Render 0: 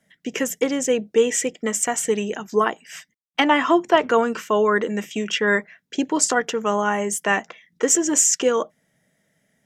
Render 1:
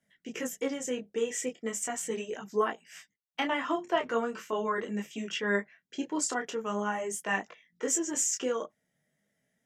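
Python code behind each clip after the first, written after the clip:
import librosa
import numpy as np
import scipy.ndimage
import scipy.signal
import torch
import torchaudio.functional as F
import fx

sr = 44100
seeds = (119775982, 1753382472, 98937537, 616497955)

y = fx.detune_double(x, sr, cents=14)
y = y * librosa.db_to_amplitude(-7.5)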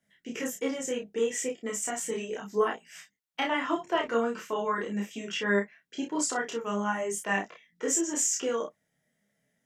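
y = fx.doubler(x, sr, ms=30.0, db=-3.0)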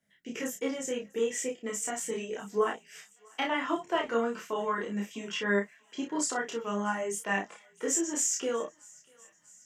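y = fx.echo_thinned(x, sr, ms=644, feedback_pct=71, hz=1100.0, wet_db=-24)
y = y * librosa.db_to_amplitude(-1.5)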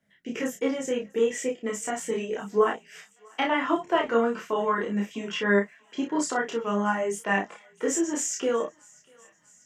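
y = fx.high_shelf(x, sr, hz=4100.0, db=-9.5)
y = y * librosa.db_to_amplitude(6.0)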